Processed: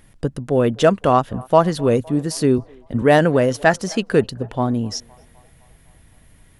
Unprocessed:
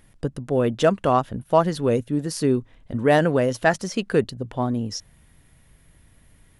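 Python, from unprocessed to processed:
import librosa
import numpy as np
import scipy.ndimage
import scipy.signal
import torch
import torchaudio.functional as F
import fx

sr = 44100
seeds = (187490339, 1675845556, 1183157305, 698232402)

y = fx.echo_banded(x, sr, ms=256, feedback_pct=64, hz=800.0, wet_db=-23.0)
y = fx.band_widen(y, sr, depth_pct=40, at=(2.58, 3.02))
y = y * librosa.db_to_amplitude(4.0)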